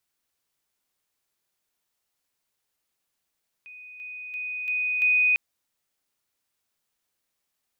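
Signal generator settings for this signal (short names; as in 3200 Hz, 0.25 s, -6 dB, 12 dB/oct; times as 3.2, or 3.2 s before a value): level ladder 2490 Hz -41.5 dBFS, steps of 6 dB, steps 5, 0.34 s 0.00 s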